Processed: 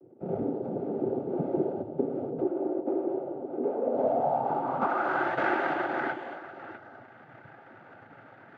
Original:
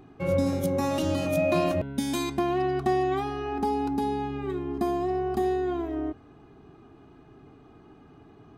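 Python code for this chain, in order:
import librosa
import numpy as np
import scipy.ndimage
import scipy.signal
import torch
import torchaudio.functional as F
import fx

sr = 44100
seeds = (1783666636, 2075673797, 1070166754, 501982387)

y = np.r_[np.sort(x[:len(x) // 64 * 64].reshape(-1, 64), axis=1).ravel(), x[len(x) // 64 * 64:]]
y = y + 10.0 ** (-10.5 / 20.0) * np.pad(y, (int(231 * sr / 1000.0), 0))[:len(y)]
y = fx.rider(y, sr, range_db=10, speed_s=2.0)
y = fx.bandpass_edges(y, sr, low_hz=290.0, high_hz=3300.0, at=(2.42, 3.94))
y = y + 10.0 ** (-13.5 / 20.0) * np.pad(y, (int(653 * sr / 1000.0), 0))[:len(y)]
y = fx.noise_vocoder(y, sr, seeds[0], bands=16)
y = fx.filter_sweep_lowpass(y, sr, from_hz=400.0, to_hz=1700.0, start_s=3.6, end_s=5.3, q=3.8)
y = y * 10.0 ** (-6.0 / 20.0)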